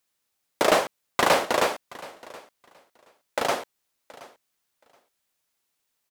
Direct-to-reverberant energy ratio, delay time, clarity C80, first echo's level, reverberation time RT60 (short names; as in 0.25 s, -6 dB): none, 0.724 s, none, -20.5 dB, none